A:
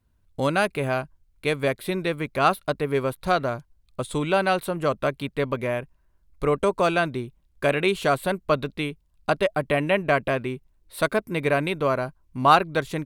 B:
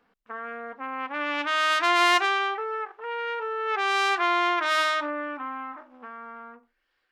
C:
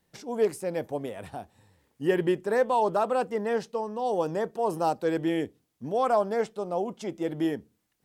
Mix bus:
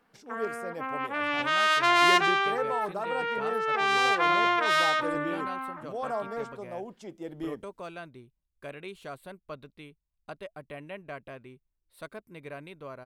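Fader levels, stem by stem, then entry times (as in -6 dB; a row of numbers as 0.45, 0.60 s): -19.5, -0.5, -9.0 dB; 1.00, 0.00, 0.00 s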